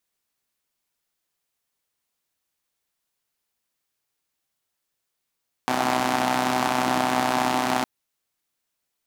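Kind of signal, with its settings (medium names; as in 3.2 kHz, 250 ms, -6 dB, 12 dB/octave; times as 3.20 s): four-cylinder engine model, steady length 2.16 s, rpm 3800, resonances 280/740 Hz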